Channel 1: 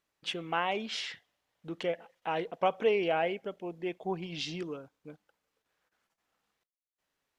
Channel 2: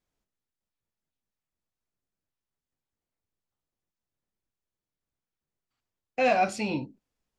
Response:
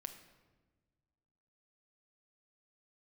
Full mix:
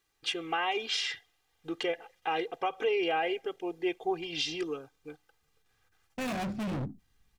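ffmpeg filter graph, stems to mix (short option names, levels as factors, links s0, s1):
-filter_complex "[0:a]tiltshelf=f=1400:g=-3,aecho=1:1:2.5:0.92,volume=1.26[s0];[1:a]asubboost=boost=10.5:cutoff=180,adynamicsmooth=sensitivity=6.5:basefreq=600,volume=33.5,asoftclip=hard,volume=0.0299,volume=0.841[s1];[s0][s1]amix=inputs=2:normalize=0,alimiter=limit=0.0944:level=0:latency=1:release=167"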